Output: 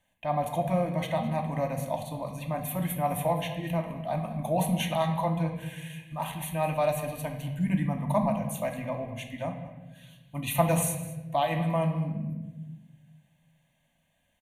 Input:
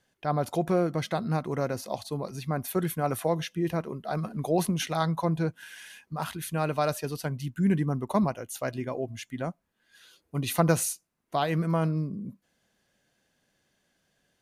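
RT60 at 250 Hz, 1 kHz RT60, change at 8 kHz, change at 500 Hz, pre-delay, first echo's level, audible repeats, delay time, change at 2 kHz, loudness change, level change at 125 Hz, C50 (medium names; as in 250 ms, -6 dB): 1.7 s, 0.95 s, -1.5 dB, 0.0 dB, 3 ms, -16.5 dB, 1, 208 ms, -1.0 dB, -0.5 dB, 0.0 dB, 7.0 dB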